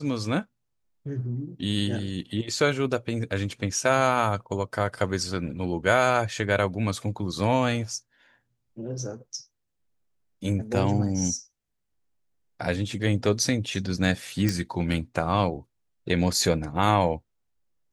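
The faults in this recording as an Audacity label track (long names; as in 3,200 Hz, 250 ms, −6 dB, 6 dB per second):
14.490000	14.490000	click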